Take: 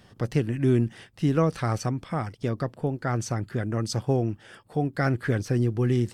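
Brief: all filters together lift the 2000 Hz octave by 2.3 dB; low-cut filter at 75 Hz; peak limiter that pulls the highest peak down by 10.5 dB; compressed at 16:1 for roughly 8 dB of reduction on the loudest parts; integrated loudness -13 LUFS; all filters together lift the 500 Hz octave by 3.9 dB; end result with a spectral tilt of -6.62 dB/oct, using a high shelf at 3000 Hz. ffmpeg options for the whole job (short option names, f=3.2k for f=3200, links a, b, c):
-af "highpass=75,equalizer=f=500:t=o:g=5,equalizer=f=2k:t=o:g=4.5,highshelf=f=3k:g=-5.5,acompressor=threshold=-22dB:ratio=16,volume=21.5dB,alimiter=limit=-1dB:level=0:latency=1"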